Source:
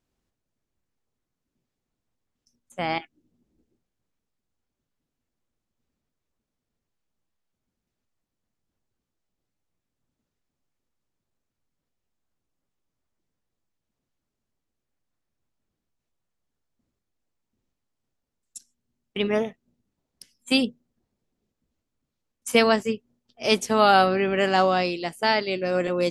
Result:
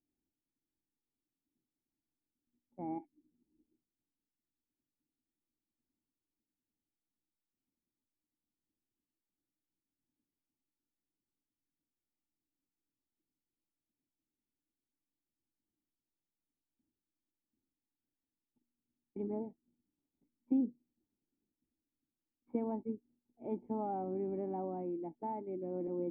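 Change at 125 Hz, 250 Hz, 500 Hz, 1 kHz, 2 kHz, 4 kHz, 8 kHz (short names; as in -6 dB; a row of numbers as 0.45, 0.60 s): -14.0 dB, -10.5 dB, -17.0 dB, -20.5 dB, under -40 dB, under -40 dB, under -35 dB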